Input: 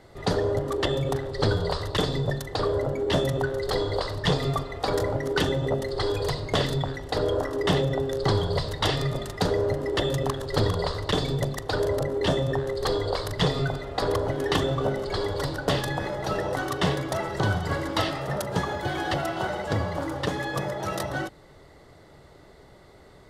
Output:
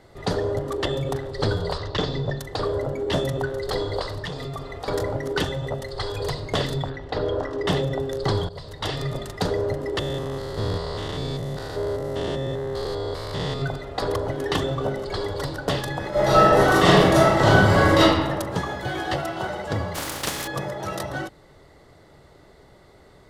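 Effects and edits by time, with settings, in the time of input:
0:01.78–0:02.39: low-pass filter 6,100 Hz 24 dB per octave
0:04.24–0:04.88: downward compressor, threshold −28 dBFS
0:05.44–0:06.18: parametric band 310 Hz −8.5 dB 1.1 octaves
0:06.89–0:07.66: low-pass filter 3,200 Hz → 5,700 Hz
0:08.49–0:09.14: fade in linear, from −16 dB
0:09.99–0:13.62: spectrum averaged block by block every 200 ms
0:16.10–0:17.99: thrown reverb, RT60 1.3 s, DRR −11.5 dB
0:18.64–0:19.20: double-tracking delay 16 ms −7 dB
0:19.94–0:20.46: compressing power law on the bin magnitudes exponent 0.35

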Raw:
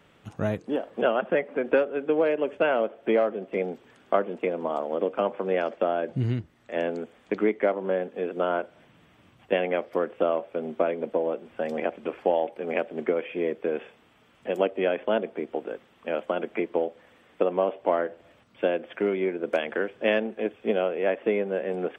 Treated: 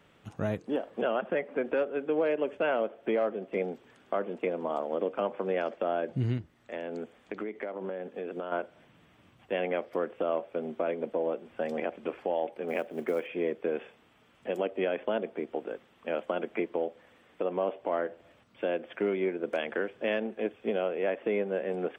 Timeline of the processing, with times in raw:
0:06.37–0:08.52: downward compressor 10 to 1, threshold −28 dBFS
0:12.68–0:13.27: floating-point word with a short mantissa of 4 bits
whole clip: brickwall limiter −16 dBFS; level −3 dB

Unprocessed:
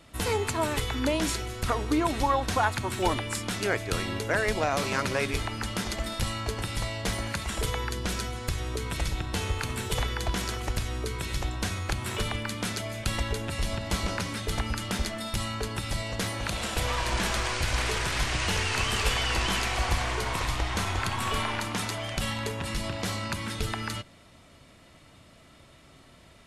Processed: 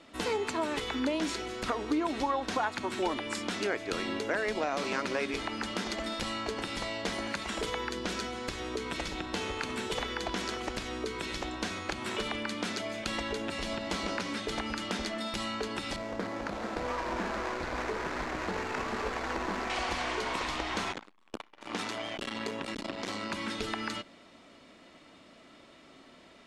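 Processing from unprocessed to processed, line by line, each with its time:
0:15.96–0:19.70: running median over 15 samples
0:20.92–0:23.33: saturating transformer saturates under 780 Hz
whole clip: low-pass filter 6,100 Hz 12 dB per octave; low shelf with overshoot 170 Hz −12.5 dB, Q 1.5; downward compressor 2 to 1, threshold −31 dBFS

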